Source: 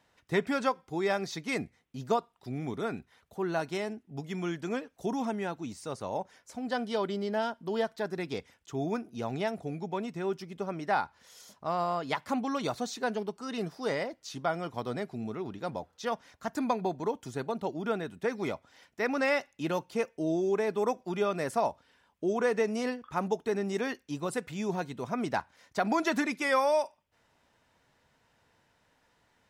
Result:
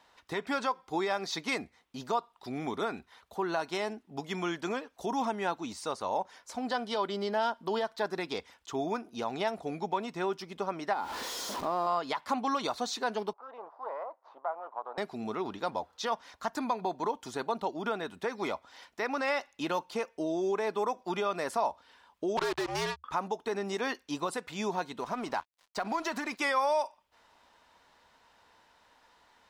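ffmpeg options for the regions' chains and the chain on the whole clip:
ffmpeg -i in.wav -filter_complex "[0:a]asettb=1/sr,asplit=3[link_01][link_02][link_03];[link_01]atrim=end=10.934[link_04];[link_02]atrim=start=10.93:end=11.87,asetpts=PTS-STARTPTS,afade=type=in:duration=0.004:curve=qsin,afade=type=out:start_time=0.936:duration=0.004:curve=qsin,aeval=exprs='val(0)+0.5*0.00944*sgn(val(0))':channel_layout=same,equalizer=frequency=320:width_type=o:width=1.8:gain=11.5,acompressor=threshold=-35dB:ratio=2.5:attack=3.2:release=140:knee=1:detection=peak[link_05];[link_03]atrim=start=11.866[link_06];[link_04][link_05]acrossfade=duration=0.004:curve1=hsin:curve2=qsin[link_07];[link_07][link_06]acrossfade=duration=0.004:curve1=qsin:curve2=hsin,asettb=1/sr,asplit=3[link_08][link_09][link_10];[link_08]atrim=end=13.334[link_11];[link_09]atrim=start=13.33:end=14.98,asetpts=PTS-STARTPTS,afade=type=in:duration=0.004:curve=qsin,afade=type=out:start_time=1.646:duration=0.004:curve=qsin,aeval=exprs='if(lt(val(0),0),0.251*val(0),val(0))':channel_layout=same,asuperpass=centerf=790:order=4:qfactor=1.3,acompressor=threshold=-46dB:ratio=1.5:attack=3.2:release=140:knee=1:detection=peak[link_12];[link_10]atrim=start=14.976[link_13];[link_11][link_12]acrossfade=duration=0.004:curve1=hsin:curve2=qsin[link_14];[link_14][link_13]acrossfade=duration=0.004:curve1=qsin:curve2=hsin,asettb=1/sr,asplit=3[link_15][link_16][link_17];[link_15]atrim=end=22.374[link_18];[link_16]atrim=start=22.37:end=23.04,asetpts=PTS-STARTPTS,afade=type=in:duration=0.004:curve=qsin,afade=type=out:start_time=0.666:duration=0.004:curve=qsin,lowpass=7800,acrusher=bits=4:mix=0:aa=0.5,afreqshift=-75[link_19];[link_17]atrim=start=23.036[link_20];[link_18][link_19]acrossfade=duration=0.004:curve1=hsin:curve2=qsin[link_21];[link_21][link_20]acrossfade=duration=0.004:curve1=qsin:curve2=hsin,asettb=1/sr,asplit=3[link_22][link_23][link_24];[link_22]atrim=end=25.004[link_25];[link_23]atrim=start=25:end=26.39,asetpts=PTS-STARTPTS,afade=type=in:duration=0.004:curve=qsin,afade=type=out:start_time=1.386:duration=0.004:curve=qsin,acompressor=threshold=-33dB:ratio=6:attack=3.2:release=140:knee=1:detection=peak,bandreject=frequency=3500:width=10,aeval=exprs='sgn(val(0))*max(abs(val(0))-0.00178,0)':channel_layout=same[link_26];[link_24]atrim=start=26.386[link_27];[link_25][link_26]acrossfade=duration=0.004:curve1=hsin:curve2=qsin[link_28];[link_28][link_27]acrossfade=duration=0.004:curve1=qsin:curve2=hsin,alimiter=level_in=2dB:limit=-24dB:level=0:latency=1:release=262,volume=-2dB,equalizer=frequency=125:width_type=o:width=1:gain=-11,equalizer=frequency=1000:width_type=o:width=1:gain=8,equalizer=frequency=4000:width_type=o:width=1:gain=6,volume=2dB" out.wav

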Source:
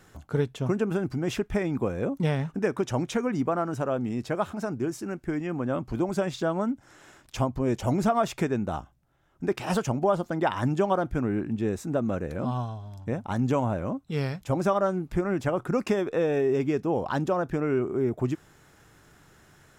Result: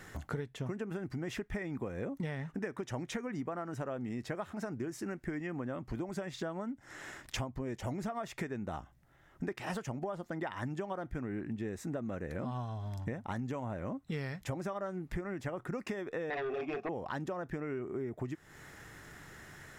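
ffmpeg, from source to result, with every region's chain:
ffmpeg -i in.wav -filter_complex "[0:a]asettb=1/sr,asplit=3[link_01][link_02][link_03];[link_01]atrim=end=16.304[link_04];[link_02]atrim=start=16.3:end=16.89,asetpts=PTS-STARTPTS,afade=type=in:duration=0.004:curve=qsin,afade=type=out:start_time=0.586:duration=0.004:curve=qsin,asplit=3[link_05][link_06][link_07];[link_05]bandpass=frequency=730:width_type=q:width=8,volume=0dB[link_08];[link_06]bandpass=frequency=1090:width_type=q:width=8,volume=-6dB[link_09];[link_07]bandpass=frequency=2440:width_type=q:width=8,volume=-9dB[link_10];[link_08][link_09][link_10]amix=inputs=3:normalize=0,asplit=2[link_11][link_12];[link_12]adelay=27,volume=-5dB[link_13];[link_11][link_13]amix=inputs=2:normalize=0,atrim=end_sample=26019,aeval=exprs='0.0891*sin(PI/2*5.62*val(0)/0.0891)':channel_layout=same[link_14];[link_03]atrim=start=16.886[link_15];[link_04][link_14]acrossfade=duration=0.004:curve1=hsin:curve2=qsin[link_16];[link_16][link_15]acrossfade=duration=0.004:curve1=qsin:curve2=hsin,equalizer=frequency=1900:width=4.2:gain=9.5,acompressor=threshold=-38dB:ratio=10,volume=3dB" out.wav

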